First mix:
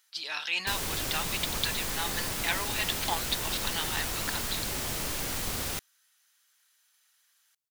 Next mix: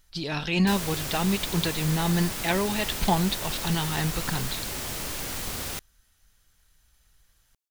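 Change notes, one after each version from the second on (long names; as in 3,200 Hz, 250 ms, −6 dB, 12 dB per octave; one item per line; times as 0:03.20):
speech: remove high-pass filter 1,200 Hz 12 dB per octave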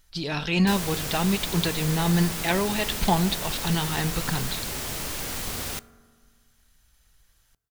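reverb: on, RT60 1.7 s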